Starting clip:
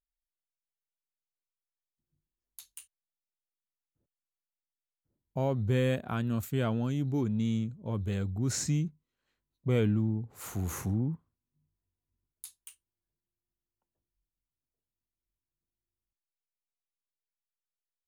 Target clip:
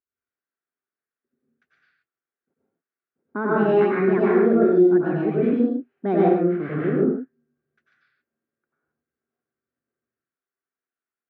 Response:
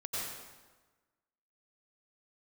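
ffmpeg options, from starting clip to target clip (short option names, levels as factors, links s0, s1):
-filter_complex "[0:a]asetrate=70560,aresample=44100,highpass=190,equalizer=f=260:t=q:w=4:g=6,equalizer=f=380:t=q:w=4:g=8,equalizer=f=600:t=q:w=4:g=-3,equalizer=f=920:t=q:w=4:g=-6,equalizer=f=1500:t=q:w=4:g=8,lowpass=f=2100:w=0.5412,lowpass=f=2100:w=1.3066[s0];[1:a]atrim=start_sample=2205,afade=t=out:st=0.33:d=0.01,atrim=end_sample=14994[s1];[s0][s1]afir=irnorm=-1:irlink=0,volume=2.24"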